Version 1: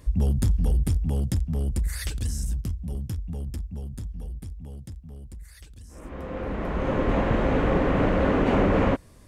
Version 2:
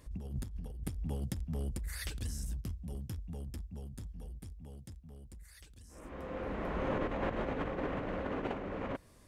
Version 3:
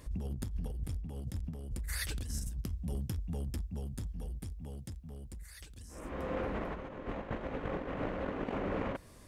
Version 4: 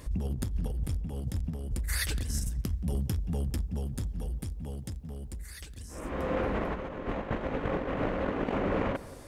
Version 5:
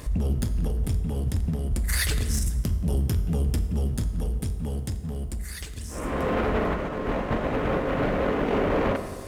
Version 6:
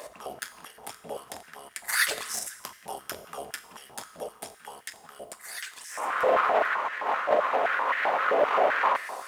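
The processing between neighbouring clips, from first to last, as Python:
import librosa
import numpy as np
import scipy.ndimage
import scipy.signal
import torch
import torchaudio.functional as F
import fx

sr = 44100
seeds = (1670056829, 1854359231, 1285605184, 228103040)

y1 = fx.dynamic_eq(x, sr, hz=7600.0, q=1.1, threshold_db=-53.0, ratio=4.0, max_db=-4)
y1 = fx.over_compress(y1, sr, threshold_db=-24.0, ratio=-0.5)
y1 = fx.low_shelf(y1, sr, hz=230.0, db=-5.5)
y1 = y1 * librosa.db_to_amplitude(-8.0)
y2 = fx.over_compress(y1, sr, threshold_db=-39.0, ratio=-0.5)
y2 = y2 * librosa.db_to_amplitude(3.0)
y3 = fx.echo_filtered(y2, sr, ms=176, feedback_pct=58, hz=2000.0, wet_db=-17.5)
y3 = y3 * librosa.db_to_amplitude(6.0)
y4 = fx.leveller(y3, sr, passes=2)
y4 = fx.rev_fdn(y4, sr, rt60_s=1.3, lf_ratio=0.95, hf_ratio=0.7, size_ms=14.0, drr_db=8.0)
y5 = fx.filter_held_highpass(y4, sr, hz=7.7, low_hz=610.0, high_hz=1800.0)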